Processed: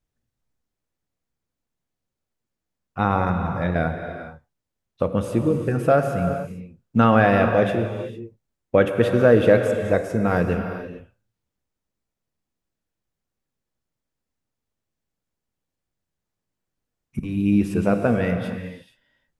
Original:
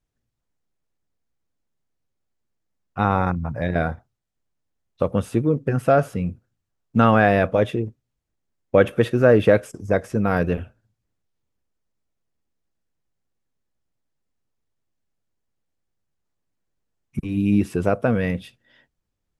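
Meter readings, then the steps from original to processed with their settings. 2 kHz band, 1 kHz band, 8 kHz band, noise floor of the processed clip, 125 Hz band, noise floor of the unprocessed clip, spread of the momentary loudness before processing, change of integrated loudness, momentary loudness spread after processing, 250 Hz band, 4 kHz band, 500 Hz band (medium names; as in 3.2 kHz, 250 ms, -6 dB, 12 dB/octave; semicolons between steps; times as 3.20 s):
0.0 dB, 0.0 dB, no reading, -84 dBFS, -0.5 dB, -79 dBFS, 13 LU, 0.0 dB, 19 LU, +0.5 dB, 0.0 dB, +0.5 dB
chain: gated-style reverb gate 480 ms flat, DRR 5.5 dB; trim -1 dB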